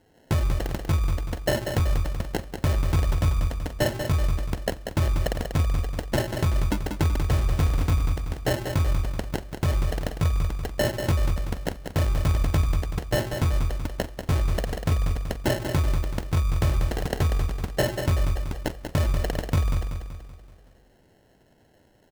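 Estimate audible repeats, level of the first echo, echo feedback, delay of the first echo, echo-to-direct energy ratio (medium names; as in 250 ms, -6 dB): 5, -7.0 dB, 48%, 190 ms, -6.0 dB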